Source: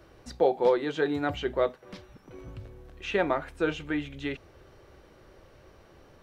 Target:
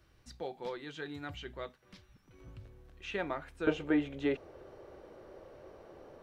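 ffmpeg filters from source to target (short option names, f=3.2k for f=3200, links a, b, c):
-af "asetnsamples=n=441:p=0,asendcmd='2.4 equalizer g -4;3.67 equalizer g 13',equalizer=f=530:w=0.56:g=-11.5,volume=-7dB"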